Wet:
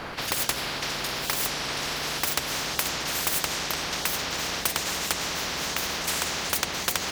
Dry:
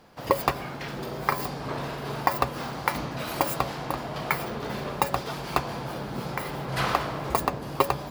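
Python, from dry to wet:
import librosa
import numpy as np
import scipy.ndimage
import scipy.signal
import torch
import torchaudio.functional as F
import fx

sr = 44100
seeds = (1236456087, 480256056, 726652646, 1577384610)

y = fx.speed_glide(x, sr, from_pct=96, to_pct=132)
y = fx.lowpass(y, sr, hz=2100.0, slope=6)
y = fx.hum_notches(y, sr, base_hz=60, count=9)
y = fx.spectral_comp(y, sr, ratio=10.0)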